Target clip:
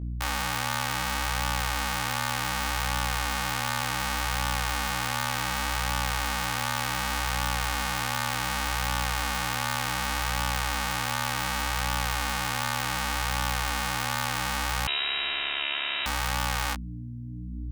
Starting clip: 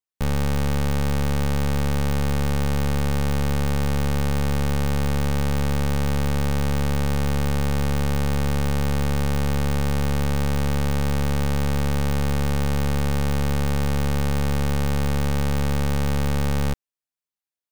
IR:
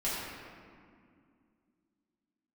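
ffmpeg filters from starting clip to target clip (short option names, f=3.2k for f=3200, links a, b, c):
-filter_complex "[0:a]highpass=f=830:w=0.5412,highpass=f=830:w=1.3066,aeval=exprs='val(0)+0.0126*(sin(2*PI*60*n/s)+sin(2*PI*2*60*n/s)/2+sin(2*PI*3*60*n/s)/3+sin(2*PI*4*60*n/s)/4+sin(2*PI*5*60*n/s)/5)':c=same,flanger=delay=17.5:depth=7.4:speed=0.67,asettb=1/sr,asplit=3[a][b][c];[a]atrim=end=14.874[d];[b]atrim=start=14.87:end=16.06,asetpts=PTS-STARTPTS,afade=t=in:d=0.004:c=qsin,afade=t=out:st=1.186:d=0.004:c=qsin,lowpass=f=3.3k:t=q:w=0.5098,lowpass=f=3.3k:t=q:w=0.6013,lowpass=f=3.3k:t=q:w=0.9,lowpass=f=3.3k:t=q:w=2.563,afreqshift=-3900[e];[c]atrim=start=16.056[f];[d][e]acrossfade=d=0.004:c1=hsin:c2=qsin[g];[g][f]acrossfade=d=0.004:c1=qsin:c2=hsin,volume=8dB"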